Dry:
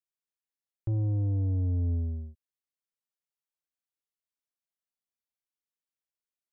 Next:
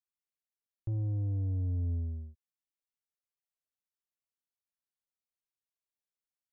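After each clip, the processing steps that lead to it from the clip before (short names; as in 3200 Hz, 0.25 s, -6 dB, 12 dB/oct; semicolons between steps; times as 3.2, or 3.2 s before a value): low shelf 130 Hz +5 dB; gain -7.5 dB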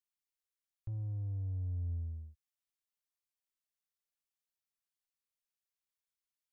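bell 300 Hz -14.5 dB 2.6 oct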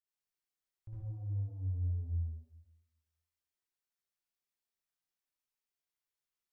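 reverb RT60 0.95 s, pre-delay 54 ms, DRR -8.5 dB; gain -8.5 dB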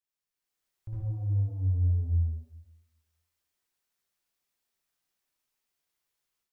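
AGC gain up to 9 dB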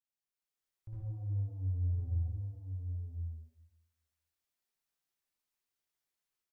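echo 1.051 s -6 dB; gain -7.5 dB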